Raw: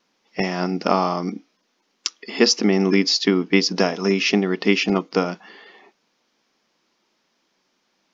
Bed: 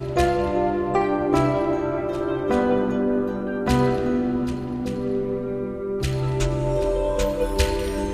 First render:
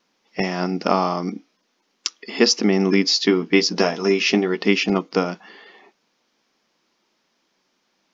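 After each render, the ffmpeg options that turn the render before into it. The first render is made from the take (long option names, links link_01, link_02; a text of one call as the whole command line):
ffmpeg -i in.wav -filter_complex "[0:a]asettb=1/sr,asplit=3[link_01][link_02][link_03];[link_01]atrim=end=3.074[link_04];[link_02]atrim=start=3.07:end=4.63,asetpts=PTS-STARTPTS,afade=type=in:duration=0.004:curve=qsin,afade=type=out:start_time=1.556:duration=0.004:curve=qsin,asplit=2[link_05][link_06];[link_06]adelay=13,volume=-7dB[link_07];[link_05][link_07]amix=inputs=2:normalize=0,atrim=end_sample=68796[link_08];[link_03]atrim=start=4.626[link_09];[link_04][link_08]acrossfade=duration=0.004:curve1=hsin:curve2=qsin[link_10];[link_10][link_09]acrossfade=duration=0.004:curve1=qsin:curve2=hsin" out.wav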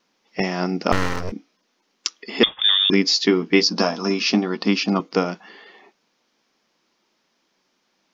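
ffmpeg -i in.wav -filter_complex "[0:a]asettb=1/sr,asplit=3[link_01][link_02][link_03];[link_01]atrim=end=0.924[link_04];[link_02]atrim=start=0.92:end=1.32,asetpts=PTS-STARTPTS,afade=type=in:duration=0.004:curve=qsin,afade=type=out:start_time=0.396:duration=0.004:curve=qsin,aeval=exprs='abs(val(0))':channel_layout=same[link_05];[link_03]atrim=start=1.316[link_06];[link_04][link_05]acrossfade=duration=0.004:curve1=hsin:curve2=qsin[link_07];[link_07][link_06]acrossfade=duration=0.004:curve1=qsin:curve2=hsin,asettb=1/sr,asplit=3[link_08][link_09][link_10];[link_08]atrim=end=2.434[link_11];[link_09]atrim=start=2.43:end=2.9,asetpts=PTS-STARTPTS,afade=type=in:duration=0.004:curve=qsin,afade=type=out:start_time=0.466:duration=0.004:curve=qsin,lowpass=frequency=3200:width_type=q:width=0.5098,lowpass=frequency=3200:width_type=q:width=0.6013,lowpass=frequency=3200:width_type=q:width=0.9,lowpass=frequency=3200:width_type=q:width=2.563,afreqshift=-3800[link_12];[link_10]atrim=start=2.896[link_13];[link_11][link_12]acrossfade=duration=0.004:curve1=hsin:curve2=qsin[link_14];[link_14][link_13]acrossfade=duration=0.004:curve1=qsin:curve2=hsin,asettb=1/sr,asplit=3[link_15][link_16][link_17];[link_15]atrim=end=3.634[link_18];[link_16]atrim=start=3.63:end=5,asetpts=PTS-STARTPTS,afade=type=in:duration=0.004:curve=qsin,afade=type=out:start_time=1.366:duration=0.004:curve=qsin,highpass=150,equalizer=frequency=230:width_type=q:width=4:gain=5,equalizer=frequency=410:width_type=q:width=4:gain=-8,equalizer=frequency=1100:width_type=q:width=4:gain=4,equalizer=frequency=2000:width_type=q:width=4:gain=-8,equalizer=frequency=2900:width_type=q:width=4:gain=-4,equalizer=frequency=4600:width_type=q:width=4:gain=5,lowpass=frequency=6600:width=0.5412,lowpass=frequency=6600:width=1.3066[link_19];[link_17]atrim=start=4.996[link_20];[link_18][link_19]acrossfade=duration=0.004:curve1=hsin:curve2=qsin[link_21];[link_21][link_20]acrossfade=duration=0.004:curve1=qsin:curve2=hsin" out.wav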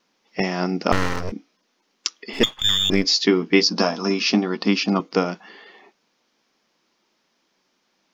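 ffmpeg -i in.wav -filter_complex "[0:a]asettb=1/sr,asplit=3[link_01][link_02][link_03];[link_01]atrim=end=2.334[link_04];[link_02]atrim=start=2.33:end=3.05,asetpts=PTS-STARTPTS,afade=type=in:duration=0.004:curve=qsin,afade=type=out:start_time=0.716:duration=0.004:curve=qsin,aeval=exprs='if(lt(val(0),0),0.447*val(0),val(0))':channel_layout=same[link_05];[link_03]atrim=start=3.046[link_06];[link_04][link_05]acrossfade=duration=0.004:curve1=hsin:curve2=qsin[link_07];[link_07][link_06]acrossfade=duration=0.004:curve1=qsin:curve2=hsin" out.wav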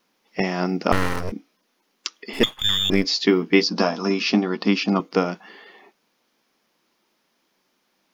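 ffmpeg -i in.wav -filter_complex "[0:a]acrossover=split=5900[link_01][link_02];[link_02]acompressor=threshold=-41dB:ratio=4:attack=1:release=60[link_03];[link_01][link_03]amix=inputs=2:normalize=0,highshelf=frequency=8000:width_type=q:width=1.5:gain=8.5" out.wav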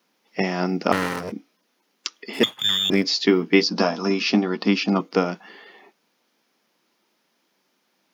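ffmpeg -i in.wav -af "highpass=frequency=130:width=0.5412,highpass=frequency=130:width=1.3066,bandreject=frequency=1100:width=25" out.wav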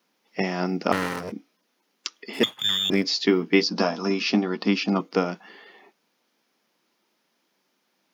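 ffmpeg -i in.wav -af "volume=-2.5dB" out.wav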